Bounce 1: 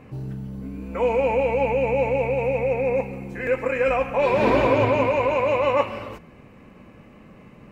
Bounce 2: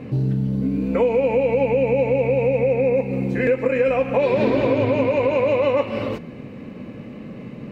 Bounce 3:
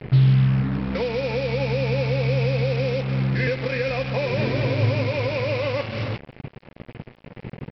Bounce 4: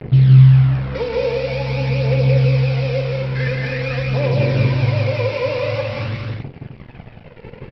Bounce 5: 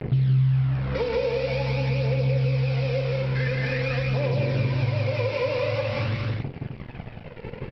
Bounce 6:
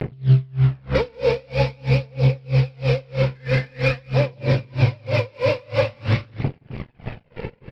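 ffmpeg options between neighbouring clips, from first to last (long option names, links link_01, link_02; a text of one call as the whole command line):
ffmpeg -i in.wav -af "equalizer=frequency=125:width_type=o:width=1:gain=10,equalizer=frequency=250:width_type=o:width=1:gain=11,equalizer=frequency=500:width_type=o:width=1:gain=9,equalizer=frequency=2000:width_type=o:width=1:gain=4,equalizer=frequency=4000:width_type=o:width=1:gain=10,acompressor=threshold=-16dB:ratio=6" out.wav
ffmpeg -i in.wav -af "equalizer=frequency=125:width_type=o:width=1:gain=9,equalizer=frequency=250:width_type=o:width=1:gain=-9,equalizer=frequency=500:width_type=o:width=1:gain=-5,equalizer=frequency=1000:width_type=o:width=1:gain=-7,equalizer=frequency=2000:width_type=o:width=1:gain=3,equalizer=frequency=4000:width_type=o:width=1:gain=-5,aresample=11025,acrusher=bits=4:mix=0:aa=0.5,aresample=44100" out.wav
ffmpeg -i in.wav -filter_complex "[0:a]aphaser=in_gain=1:out_gain=1:delay=2.3:decay=0.54:speed=0.47:type=triangular,asplit=2[link_01][link_02];[link_02]aecho=0:1:43.73|174.9|212.8|259.5:0.316|0.631|0.355|0.447[link_03];[link_01][link_03]amix=inputs=2:normalize=0,volume=-1.5dB" out.wav
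ffmpeg -i in.wav -af "acompressor=threshold=-23dB:ratio=3" out.wav
ffmpeg -i in.wav -filter_complex "[0:a]asplit=2[link_01][link_02];[link_02]volume=23.5dB,asoftclip=hard,volume=-23.5dB,volume=-6dB[link_03];[link_01][link_03]amix=inputs=2:normalize=0,aeval=exprs='val(0)*pow(10,-33*(0.5-0.5*cos(2*PI*3.1*n/s))/20)':channel_layout=same,volume=7dB" out.wav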